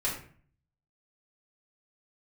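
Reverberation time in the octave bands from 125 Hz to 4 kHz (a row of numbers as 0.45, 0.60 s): 0.80, 0.65, 0.50, 0.45, 0.45, 0.35 s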